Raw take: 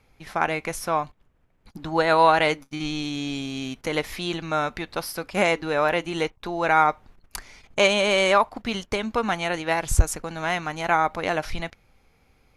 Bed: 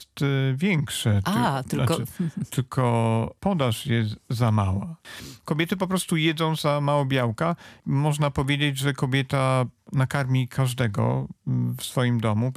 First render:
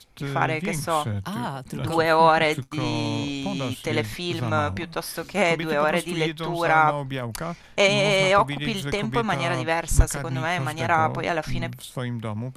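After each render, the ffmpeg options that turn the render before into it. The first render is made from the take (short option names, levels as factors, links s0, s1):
-filter_complex "[1:a]volume=0.447[s0];[0:a][s0]amix=inputs=2:normalize=0"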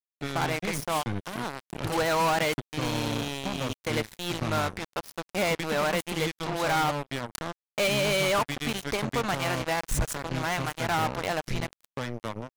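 -af "acrusher=bits=3:mix=0:aa=0.5,asoftclip=type=tanh:threshold=0.0891"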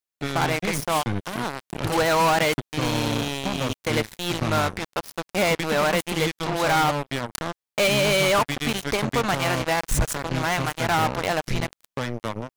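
-af "volume=1.78"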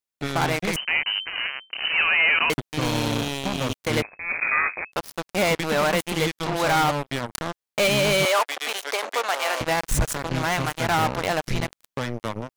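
-filter_complex "[0:a]asettb=1/sr,asplit=3[s0][s1][s2];[s0]atrim=end=0.764[s3];[s1]atrim=start=0.76:end=2.5,asetpts=PTS-STARTPTS,afade=t=in:d=0.004:c=qsin,afade=t=out:st=1.736:d=0.004:c=qsin,lowpass=f=2600:t=q:w=0.5098,lowpass=f=2600:t=q:w=0.6013,lowpass=f=2600:t=q:w=0.9,lowpass=f=2600:t=q:w=2.563,afreqshift=-3100[s4];[s2]atrim=start=2.496[s5];[s3][s4]acrossfade=d=0.004:c1=hsin:c2=qsin[s6];[s6][s5]acrossfade=d=0.004:c1=qsin:c2=hsin,asettb=1/sr,asplit=3[s7][s8][s9];[s7]atrim=end=4.024[s10];[s8]atrim=start=4.02:end=4.92,asetpts=PTS-STARTPTS,afade=t=in:d=0.004:c=qsin,afade=t=out:st=0.896:d=0.004:c=qsin,lowpass=f=2200:t=q:w=0.5098,lowpass=f=2200:t=q:w=0.6013,lowpass=f=2200:t=q:w=0.9,lowpass=f=2200:t=q:w=2.563,afreqshift=-2600[s11];[s9]atrim=start=4.916[s12];[s10][s11]acrossfade=d=0.004:c1=hsin:c2=qsin[s13];[s13][s12]acrossfade=d=0.004:c1=qsin:c2=hsin,asettb=1/sr,asplit=3[s14][s15][s16];[s14]atrim=end=8.254[s17];[s15]atrim=start=8.25:end=9.61,asetpts=PTS-STARTPTS,afade=t=in:d=0.004:c=qsin,afade=t=out:st=1.356:d=0.004:c=qsin,highpass=f=470:w=0.5412,highpass=f=470:w=1.3066[s18];[s16]atrim=start=9.606[s19];[s17][s18]acrossfade=d=0.004:c1=hsin:c2=qsin[s20];[s20][s19]acrossfade=d=0.004:c1=qsin:c2=hsin"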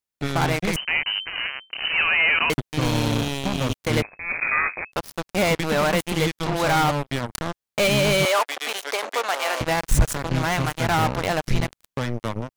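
-af "lowshelf=f=180:g=6.5"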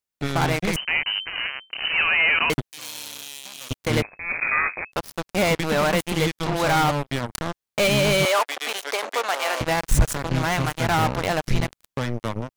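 -filter_complex "[0:a]asettb=1/sr,asplit=3[s0][s1][s2];[s0]atrim=end=2.714[s3];[s1]atrim=start=2.71:end=3.71,asetpts=PTS-STARTPTS,afade=t=in:d=0.004:c=qsin,afade=t=out:st=0.996:d=0.004:c=qsin,aderivative[s4];[s2]atrim=start=3.706[s5];[s3][s4]acrossfade=d=0.004:c1=hsin:c2=qsin[s6];[s6][s5]acrossfade=d=0.004:c1=qsin:c2=hsin"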